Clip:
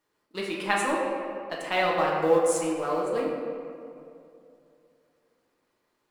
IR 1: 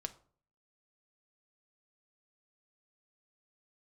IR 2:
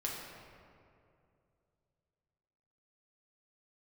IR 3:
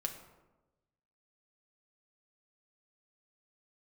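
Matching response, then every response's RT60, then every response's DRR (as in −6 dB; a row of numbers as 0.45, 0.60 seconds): 2; 0.50, 2.5, 1.1 seconds; 7.5, −4.0, 2.5 decibels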